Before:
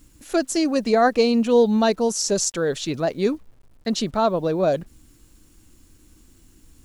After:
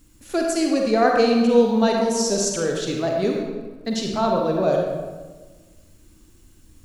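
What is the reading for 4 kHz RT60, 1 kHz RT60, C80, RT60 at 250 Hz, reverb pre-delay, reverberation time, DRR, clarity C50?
0.90 s, 1.3 s, 3.5 dB, 1.6 s, 37 ms, 1.3 s, 0.0 dB, 1.0 dB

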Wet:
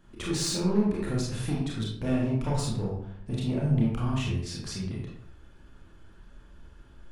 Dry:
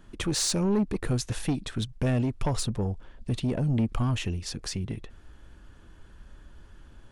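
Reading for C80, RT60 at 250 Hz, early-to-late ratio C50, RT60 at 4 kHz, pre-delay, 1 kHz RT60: 5.5 dB, 0.75 s, 1.5 dB, 0.45 s, 26 ms, 0.65 s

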